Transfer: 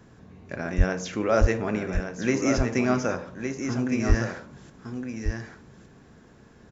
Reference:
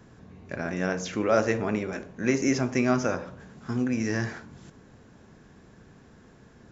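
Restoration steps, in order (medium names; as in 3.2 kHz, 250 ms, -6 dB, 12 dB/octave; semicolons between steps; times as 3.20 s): 0.77–0.89 s: high-pass 140 Hz 24 dB/octave; 1.40–1.52 s: high-pass 140 Hz 24 dB/octave; 4.08–4.20 s: high-pass 140 Hz 24 dB/octave; inverse comb 1163 ms -7 dB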